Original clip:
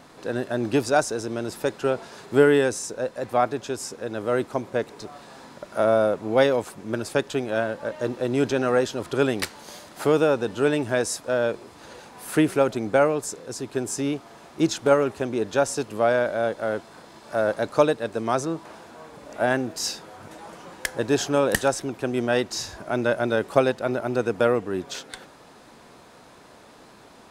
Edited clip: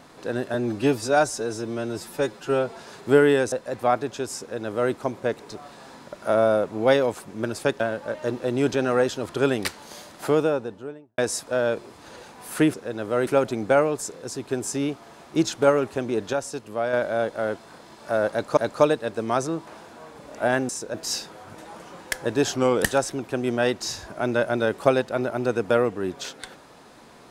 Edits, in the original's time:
0.54–2.04 s: stretch 1.5×
2.77–3.02 s: move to 19.67 s
3.90–4.43 s: copy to 12.51 s
7.30–7.57 s: delete
9.92–10.95 s: studio fade out
15.57–16.17 s: gain -5.5 dB
17.55–17.81 s: loop, 2 plays
21.27–21.53 s: speed 90%

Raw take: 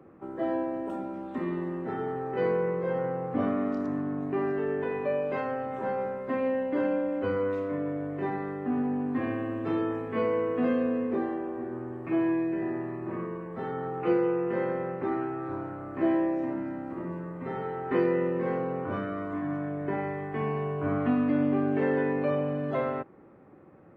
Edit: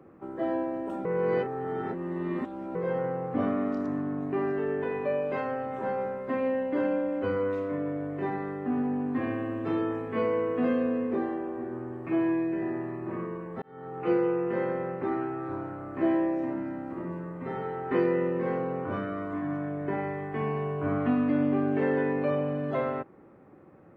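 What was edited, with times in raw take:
1.05–2.75 s: reverse
13.62–14.14 s: fade in

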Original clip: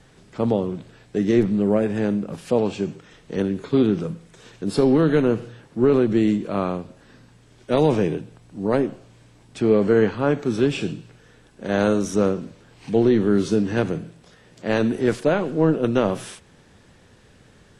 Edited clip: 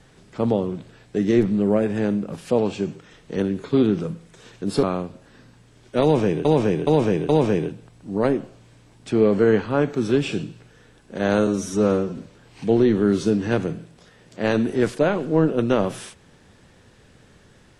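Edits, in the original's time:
4.83–6.58 s: delete
7.78–8.20 s: loop, 4 plays
11.96–12.43 s: stretch 1.5×

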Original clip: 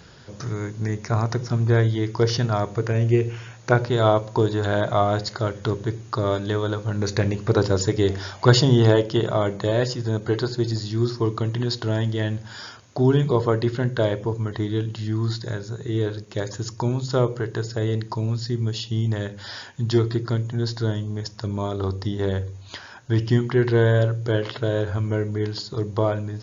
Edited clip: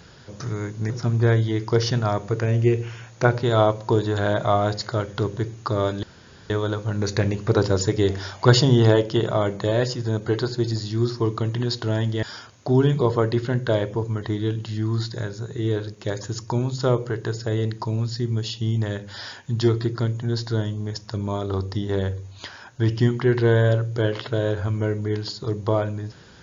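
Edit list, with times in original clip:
0.90–1.37 s: delete
6.50 s: insert room tone 0.47 s
12.23–12.53 s: delete

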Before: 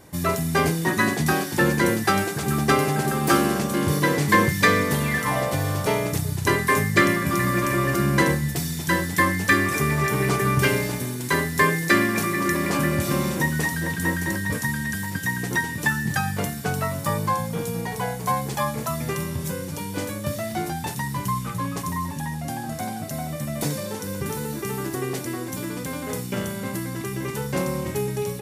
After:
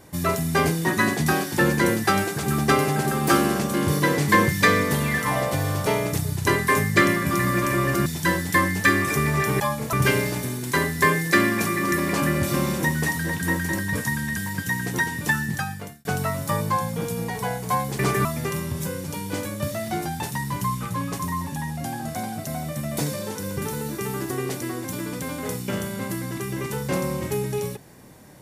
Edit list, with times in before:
8.06–8.70 s: delete
10.24–10.50 s: swap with 18.56–18.89 s
15.95–16.62 s: fade out

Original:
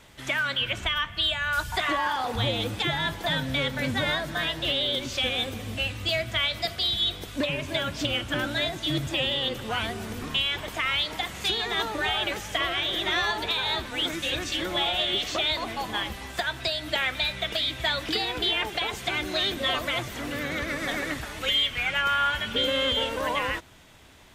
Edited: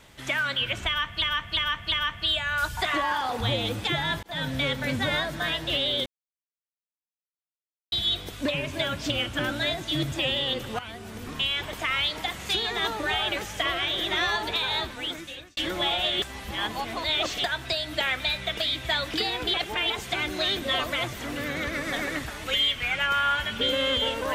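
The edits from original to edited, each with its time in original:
0.87–1.22 s: loop, 4 plays
3.18–3.43 s: fade in
5.01–6.87 s: mute
9.74–10.77 s: fade in equal-power, from -13.5 dB
13.69–14.52 s: fade out
15.17–16.39 s: reverse
18.49–18.85 s: reverse

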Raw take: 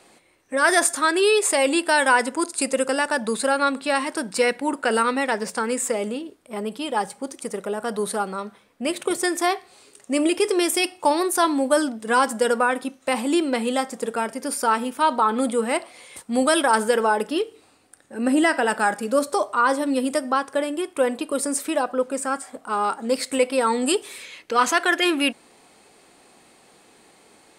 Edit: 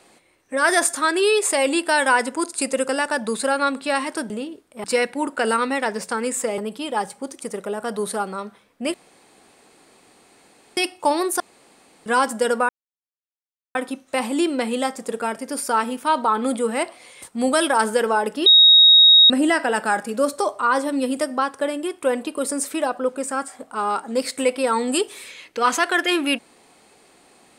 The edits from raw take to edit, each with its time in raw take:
6.04–6.58 s: move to 4.30 s
8.94–10.77 s: room tone
11.40–12.06 s: room tone
12.69 s: insert silence 1.06 s
17.40–18.24 s: bleep 3.77 kHz -7.5 dBFS

